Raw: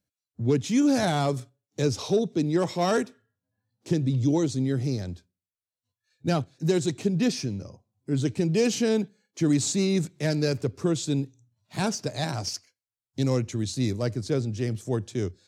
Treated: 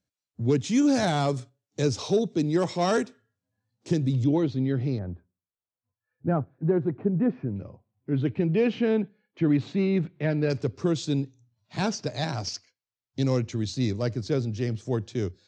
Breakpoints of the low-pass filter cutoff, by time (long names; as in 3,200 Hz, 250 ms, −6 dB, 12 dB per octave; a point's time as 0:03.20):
low-pass filter 24 dB per octave
8,300 Hz
from 0:04.24 3,600 Hz
from 0:04.99 1,500 Hz
from 0:07.56 2,900 Hz
from 0:10.50 6,100 Hz